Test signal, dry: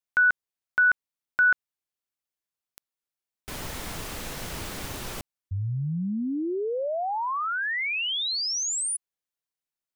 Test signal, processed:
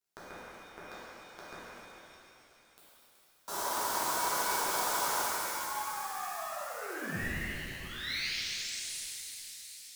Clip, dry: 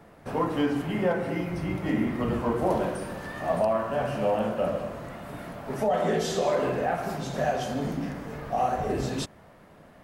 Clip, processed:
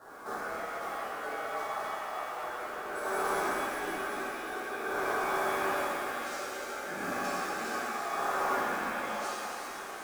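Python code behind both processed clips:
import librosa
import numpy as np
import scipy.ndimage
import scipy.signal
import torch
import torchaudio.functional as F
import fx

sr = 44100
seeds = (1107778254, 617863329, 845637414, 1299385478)

p1 = scipy.signal.sosfilt(scipy.signal.cheby1(2, 1.0, [560.0, 4800.0], 'bandstop', fs=sr, output='sos'), x)
p2 = fx.hum_notches(p1, sr, base_hz=60, count=5)
p3 = fx.over_compress(p2, sr, threshold_db=-39.0, ratio=-1.0)
p4 = fx.quant_float(p3, sr, bits=2)
p5 = fx.dmg_crackle(p4, sr, seeds[0], per_s=41.0, level_db=-62.0)
p6 = p5 * np.sin(2.0 * np.pi * 970.0 * np.arange(len(p5)) / sr)
p7 = p6 + fx.echo_wet_highpass(p6, sr, ms=375, feedback_pct=75, hz=4300.0, wet_db=-9, dry=0)
p8 = fx.rev_shimmer(p7, sr, seeds[1], rt60_s=2.9, semitones=7, shimmer_db=-8, drr_db=-11.0)
y = p8 * librosa.db_to_amplitude(-6.0)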